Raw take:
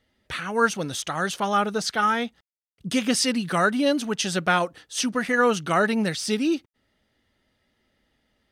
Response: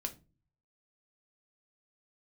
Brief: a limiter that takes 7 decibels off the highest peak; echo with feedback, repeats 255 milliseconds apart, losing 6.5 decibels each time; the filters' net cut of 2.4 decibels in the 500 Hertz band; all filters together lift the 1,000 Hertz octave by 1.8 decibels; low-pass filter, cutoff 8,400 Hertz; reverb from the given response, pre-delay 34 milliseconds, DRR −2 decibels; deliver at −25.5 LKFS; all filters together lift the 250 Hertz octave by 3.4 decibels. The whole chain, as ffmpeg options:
-filter_complex "[0:a]lowpass=8400,equalizer=frequency=250:width_type=o:gain=5,equalizer=frequency=500:width_type=o:gain=-5,equalizer=frequency=1000:width_type=o:gain=3.5,alimiter=limit=-13.5dB:level=0:latency=1,aecho=1:1:255|510|765|1020|1275|1530:0.473|0.222|0.105|0.0491|0.0231|0.0109,asplit=2[link_01][link_02];[1:a]atrim=start_sample=2205,adelay=34[link_03];[link_02][link_03]afir=irnorm=-1:irlink=0,volume=2.5dB[link_04];[link_01][link_04]amix=inputs=2:normalize=0,volume=-7dB"

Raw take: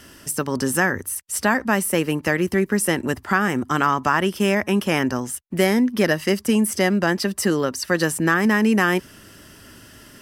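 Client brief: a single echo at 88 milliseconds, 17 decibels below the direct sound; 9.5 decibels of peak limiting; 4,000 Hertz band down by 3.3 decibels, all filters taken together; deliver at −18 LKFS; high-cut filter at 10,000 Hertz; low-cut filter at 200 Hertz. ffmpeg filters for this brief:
ffmpeg -i in.wav -af "highpass=200,lowpass=10000,equalizer=frequency=4000:width_type=o:gain=-5,alimiter=limit=-15dB:level=0:latency=1,aecho=1:1:88:0.141,volume=7.5dB" out.wav

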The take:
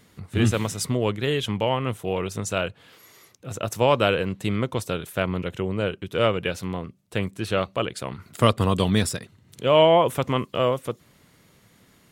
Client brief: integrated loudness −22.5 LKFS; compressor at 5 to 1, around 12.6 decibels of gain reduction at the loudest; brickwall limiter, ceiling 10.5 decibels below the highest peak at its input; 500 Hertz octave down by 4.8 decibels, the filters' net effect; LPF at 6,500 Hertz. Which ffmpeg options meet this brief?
ffmpeg -i in.wav -af "lowpass=6500,equalizer=frequency=500:width_type=o:gain=-6,acompressor=threshold=-29dB:ratio=5,volume=14.5dB,alimiter=limit=-10dB:level=0:latency=1" out.wav

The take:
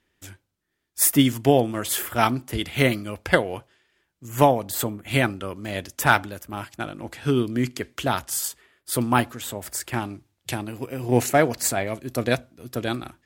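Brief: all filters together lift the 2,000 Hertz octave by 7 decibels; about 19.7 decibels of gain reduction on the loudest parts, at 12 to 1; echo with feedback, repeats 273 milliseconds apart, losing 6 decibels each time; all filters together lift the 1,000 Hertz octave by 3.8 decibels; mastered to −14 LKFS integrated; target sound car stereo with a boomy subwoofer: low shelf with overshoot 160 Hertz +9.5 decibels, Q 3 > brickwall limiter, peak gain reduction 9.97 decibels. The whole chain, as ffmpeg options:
ffmpeg -i in.wav -af "equalizer=frequency=1000:width_type=o:gain=3.5,equalizer=frequency=2000:width_type=o:gain=8,acompressor=threshold=-27dB:ratio=12,lowshelf=frequency=160:width_type=q:width=3:gain=9.5,aecho=1:1:273|546|819|1092|1365|1638:0.501|0.251|0.125|0.0626|0.0313|0.0157,volume=15.5dB,alimiter=limit=-4dB:level=0:latency=1" out.wav

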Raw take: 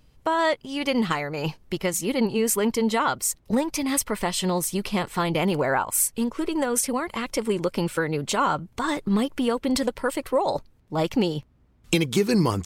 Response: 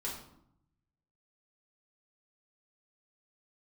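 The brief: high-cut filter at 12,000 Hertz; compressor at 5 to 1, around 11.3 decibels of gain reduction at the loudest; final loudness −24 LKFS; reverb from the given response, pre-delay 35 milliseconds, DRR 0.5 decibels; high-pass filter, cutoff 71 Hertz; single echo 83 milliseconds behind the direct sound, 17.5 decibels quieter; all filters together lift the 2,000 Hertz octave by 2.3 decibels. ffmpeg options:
-filter_complex "[0:a]highpass=71,lowpass=12000,equalizer=frequency=2000:width_type=o:gain=3,acompressor=threshold=-30dB:ratio=5,aecho=1:1:83:0.133,asplit=2[link_01][link_02];[1:a]atrim=start_sample=2205,adelay=35[link_03];[link_02][link_03]afir=irnorm=-1:irlink=0,volume=-2dB[link_04];[link_01][link_04]amix=inputs=2:normalize=0,volume=6dB"

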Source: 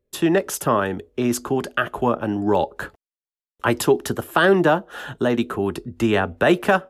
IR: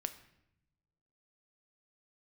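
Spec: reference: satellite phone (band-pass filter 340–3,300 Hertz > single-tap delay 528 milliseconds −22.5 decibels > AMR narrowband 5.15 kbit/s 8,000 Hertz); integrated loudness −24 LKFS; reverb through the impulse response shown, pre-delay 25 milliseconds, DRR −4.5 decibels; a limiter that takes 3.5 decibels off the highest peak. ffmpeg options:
-filter_complex "[0:a]alimiter=limit=-9.5dB:level=0:latency=1,asplit=2[link_01][link_02];[1:a]atrim=start_sample=2205,adelay=25[link_03];[link_02][link_03]afir=irnorm=-1:irlink=0,volume=5.5dB[link_04];[link_01][link_04]amix=inputs=2:normalize=0,highpass=340,lowpass=3300,aecho=1:1:528:0.075,volume=-3.5dB" -ar 8000 -c:a libopencore_amrnb -b:a 5150

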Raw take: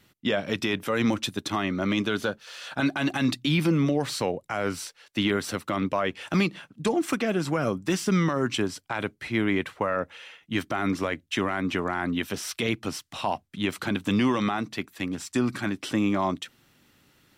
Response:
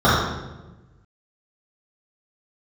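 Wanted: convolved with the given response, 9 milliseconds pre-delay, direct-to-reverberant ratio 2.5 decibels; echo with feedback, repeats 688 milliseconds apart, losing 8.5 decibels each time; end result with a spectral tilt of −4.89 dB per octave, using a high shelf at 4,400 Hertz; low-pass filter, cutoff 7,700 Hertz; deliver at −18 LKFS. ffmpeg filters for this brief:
-filter_complex "[0:a]lowpass=7700,highshelf=frequency=4400:gain=4.5,aecho=1:1:688|1376|2064|2752:0.376|0.143|0.0543|0.0206,asplit=2[link_01][link_02];[1:a]atrim=start_sample=2205,adelay=9[link_03];[link_02][link_03]afir=irnorm=-1:irlink=0,volume=-28.5dB[link_04];[link_01][link_04]amix=inputs=2:normalize=0,volume=6dB"

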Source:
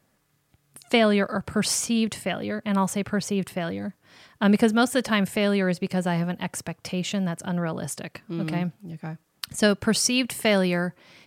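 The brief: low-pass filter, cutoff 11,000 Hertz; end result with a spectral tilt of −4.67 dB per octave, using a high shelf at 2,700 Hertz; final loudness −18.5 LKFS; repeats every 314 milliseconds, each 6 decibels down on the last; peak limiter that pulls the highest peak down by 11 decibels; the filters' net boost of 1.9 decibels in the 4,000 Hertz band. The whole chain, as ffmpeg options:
ffmpeg -i in.wav -af "lowpass=11000,highshelf=frequency=2700:gain=-4,equalizer=frequency=4000:width_type=o:gain=6.5,alimiter=limit=-17dB:level=0:latency=1,aecho=1:1:314|628|942|1256|1570|1884:0.501|0.251|0.125|0.0626|0.0313|0.0157,volume=8.5dB" out.wav

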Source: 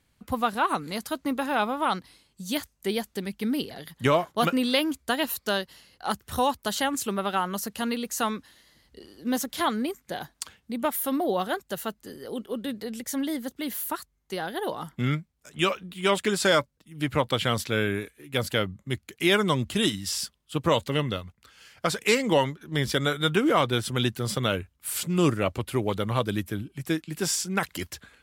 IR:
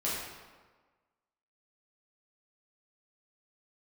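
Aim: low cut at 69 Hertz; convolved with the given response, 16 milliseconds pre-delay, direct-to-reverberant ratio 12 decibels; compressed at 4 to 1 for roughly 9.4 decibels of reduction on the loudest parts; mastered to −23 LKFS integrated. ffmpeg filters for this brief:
-filter_complex "[0:a]highpass=69,acompressor=threshold=-28dB:ratio=4,asplit=2[link_01][link_02];[1:a]atrim=start_sample=2205,adelay=16[link_03];[link_02][link_03]afir=irnorm=-1:irlink=0,volume=-19dB[link_04];[link_01][link_04]amix=inputs=2:normalize=0,volume=10dB"

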